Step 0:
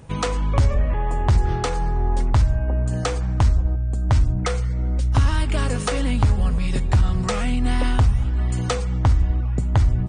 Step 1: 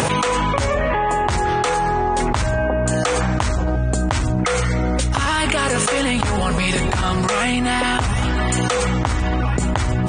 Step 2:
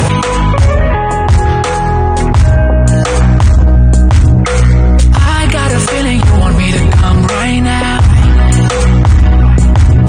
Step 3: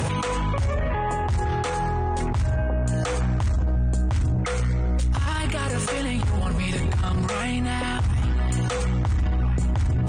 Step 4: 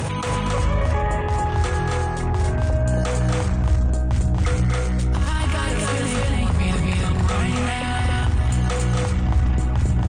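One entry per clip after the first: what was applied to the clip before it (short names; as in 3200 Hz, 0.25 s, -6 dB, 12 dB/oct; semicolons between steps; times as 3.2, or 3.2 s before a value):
HPF 650 Hz 6 dB/oct; dynamic EQ 4900 Hz, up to -5 dB, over -51 dBFS, Q 2.2; fast leveller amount 100%; gain +4 dB
bell 82 Hz +15 dB 1.8 oct; sine folder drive 3 dB, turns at 0.5 dBFS; gain -2 dB
limiter -13 dBFS, peak gain reduction 11.5 dB; gain -5 dB
loudspeakers at several distances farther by 81 m -7 dB, 94 m -1 dB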